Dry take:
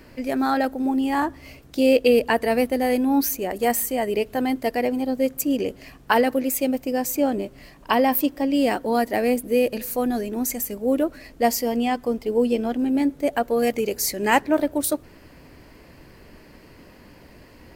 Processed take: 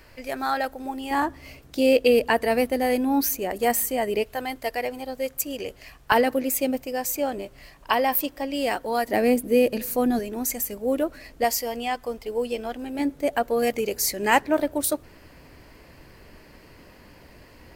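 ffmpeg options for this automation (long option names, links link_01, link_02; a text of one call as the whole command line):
ffmpeg -i in.wav -af "asetnsamples=nb_out_samples=441:pad=0,asendcmd='1.11 equalizer g -3;4.24 equalizer g -14;6.12 equalizer g -3;6.83 equalizer g -10;9.08 equalizer g 1.5;10.19 equalizer g -5;11.44 equalizer g -12.5;12.99 equalizer g -4',equalizer=frequency=240:width_type=o:width=1.7:gain=-13" out.wav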